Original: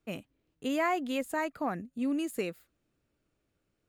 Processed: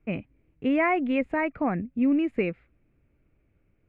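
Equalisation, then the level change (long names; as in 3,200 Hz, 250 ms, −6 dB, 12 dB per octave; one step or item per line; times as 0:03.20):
low-pass with resonance 2,300 Hz, resonance Q 5.1
tilt shelving filter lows +7.5 dB, about 1,200 Hz
low-shelf EQ 110 Hz +10.5 dB
0.0 dB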